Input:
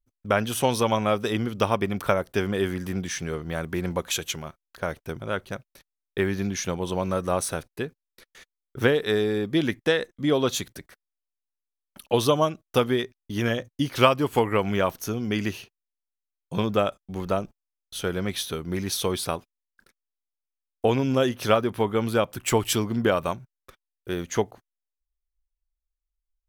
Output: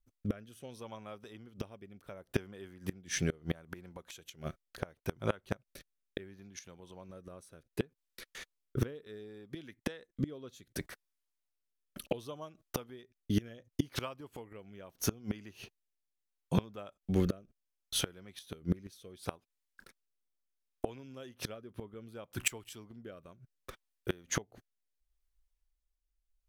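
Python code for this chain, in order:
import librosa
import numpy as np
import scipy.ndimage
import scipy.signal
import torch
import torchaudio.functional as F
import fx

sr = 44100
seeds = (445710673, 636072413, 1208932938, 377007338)

y = fx.gate_flip(x, sr, shuts_db=-20.0, range_db=-27)
y = fx.rotary(y, sr, hz=0.7)
y = y * librosa.db_to_amplitude(4.0)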